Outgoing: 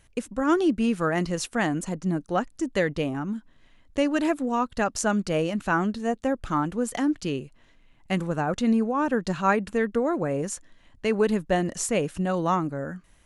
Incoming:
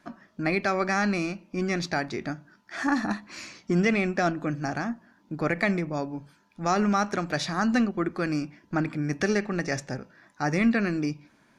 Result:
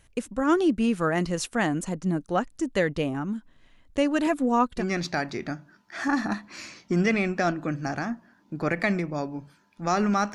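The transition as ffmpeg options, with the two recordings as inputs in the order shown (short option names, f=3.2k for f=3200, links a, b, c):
-filter_complex "[0:a]asettb=1/sr,asplit=3[a][b][c];[a]atrim=end=4.264[d];[b]atrim=start=4.26:end=4.84,asetpts=PTS-STARTPTS,afade=t=in:d=0.004:c=qsin,afade=t=out:st=0.576:d=0.004:c=qsin,aecho=1:1:4.1:0.5,atrim=end_sample=25578[e];[c]atrim=start=4.836[f];[d][e]acrossfade=d=0.004:c1=hsin:c2=qsin[g];[g][f]acrossfade=d=0.004:c1=qsin:c2=hsin,apad=whole_dur=10.34,atrim=end=10.34,atrim=end=4.84,asetpts=PTS-STARTPTS[h];[1:a]atrim=start=1.55:end=7.13,asetpts=PTS-STARTPTS[i];[h][i]acrossfade=d=0.08:c1=tri:c2=tri"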